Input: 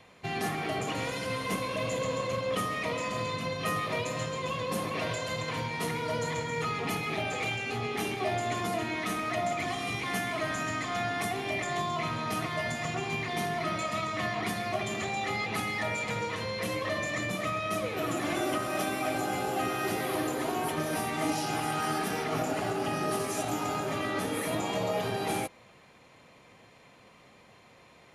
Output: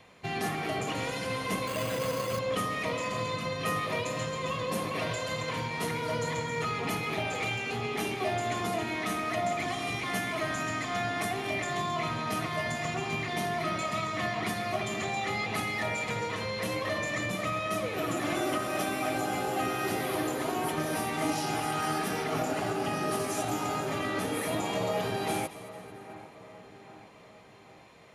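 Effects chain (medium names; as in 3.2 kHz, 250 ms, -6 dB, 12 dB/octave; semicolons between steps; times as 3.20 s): on a send: two-band feedback delay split 2.1 kHz, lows 800 ms, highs 222 ms, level -15 dB; 1.67–2.39 s: on the sum: careless resampling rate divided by 8×, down none, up hold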